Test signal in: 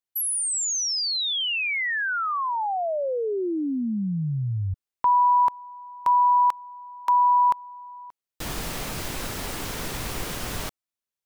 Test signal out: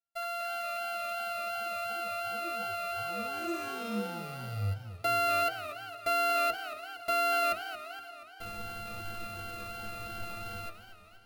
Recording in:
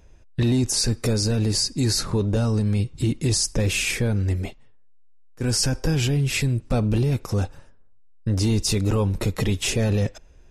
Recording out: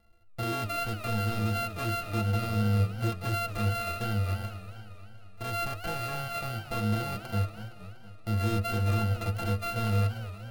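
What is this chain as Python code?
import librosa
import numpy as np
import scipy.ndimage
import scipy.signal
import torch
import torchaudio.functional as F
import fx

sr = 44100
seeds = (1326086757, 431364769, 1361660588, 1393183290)

y = np.r_[np.sort(x[:len(x) // 64 * 64].reshape(-1, 64), axis=1).ravel(), x[len(x) // 64 * 64:]]
y = fx.stiff_resonator(y, sr, f0_hz=100.0, decay_s=0.27, stiffness=0.03)
y = fx.echo_warbled(y, sr, ms=235, feedback_pct=62, rate_hz=2.8, cents=220, wet_db=-13.0)
y = y * librosa.db_to_amplitude(-1.5)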